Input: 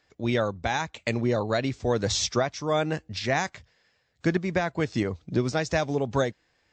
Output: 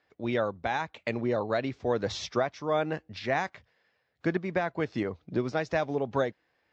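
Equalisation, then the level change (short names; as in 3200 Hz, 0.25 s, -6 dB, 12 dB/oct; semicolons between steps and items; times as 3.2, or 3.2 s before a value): HPF 590 Hz 6 dB/oct; air absorption 140 m; tilt -2 dB/oct; 0.0 dB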